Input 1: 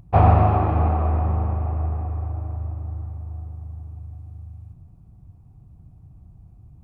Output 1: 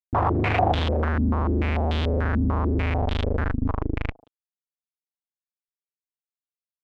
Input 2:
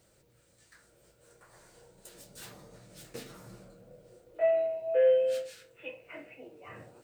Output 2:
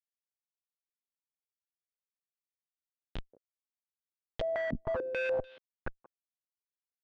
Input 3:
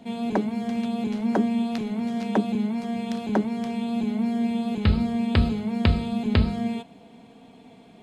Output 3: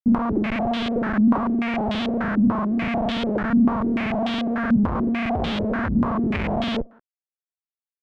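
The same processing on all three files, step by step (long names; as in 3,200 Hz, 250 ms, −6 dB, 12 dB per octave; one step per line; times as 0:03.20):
comparator with hysteresis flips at −31 dBFS
far-end echo of a speakerphone 180 ms, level −20 dB
low-pass on a step sequencer 6.8 Hz 240–3,400 Hz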